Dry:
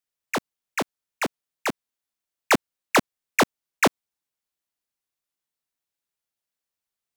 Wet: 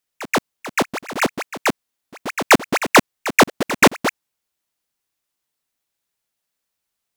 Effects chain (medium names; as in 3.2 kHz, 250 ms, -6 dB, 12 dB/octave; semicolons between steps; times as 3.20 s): chunks repeated in reverse 330 ms, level -9.5 dB; pre-echo 130 ms -13.5 dB; trim +7.5 dB